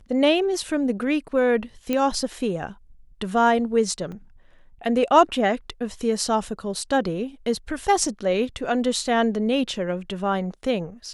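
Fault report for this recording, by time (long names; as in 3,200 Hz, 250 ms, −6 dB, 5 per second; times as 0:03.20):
0:01.93: click −11 dBFS
0:04.12: drop-out 3.7 ms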